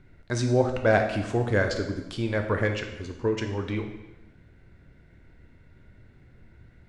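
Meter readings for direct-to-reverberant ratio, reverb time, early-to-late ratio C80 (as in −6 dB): 4.0 dB, 0.95 s, 9.5 dB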